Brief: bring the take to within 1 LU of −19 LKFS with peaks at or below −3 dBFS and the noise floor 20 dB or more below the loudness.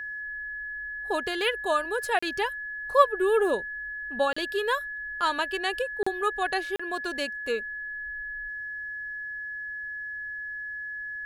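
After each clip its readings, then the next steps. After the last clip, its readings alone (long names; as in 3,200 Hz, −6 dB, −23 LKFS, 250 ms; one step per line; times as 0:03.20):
number of dropouts 4; longest dropout 35 ms; interfering tone 1,700 Hz; level of the tone −33 dBFS; integrated loudness −29.0 LKFS; sample peak −6.0 dBFS; target loudness −19.0 LKFS
→ repair the gap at 0:02.19/0:04.33/0:06.03/0:06.76, 35 ms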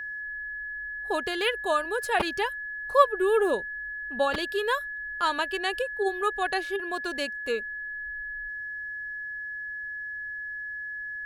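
number of dropouts 0; interfering tone 1,700 Hz; level of the tone −33 dBFS
→ notch filter 1,700 Hz, Q 30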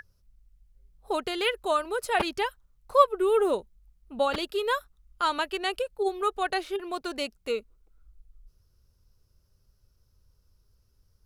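interfering tone none found; integrated loudness −28.0 LKFS; sample peak −7.0 dBFS; target loudness −19.0 LKFS
→ level +9 dB
brickwall limiter −3 dBFS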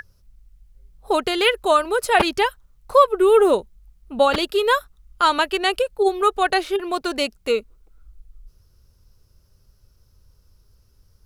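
integrated loudness −19.5 LKFS; sample peak −3.0 dBFS; background noise floor −59 dBFS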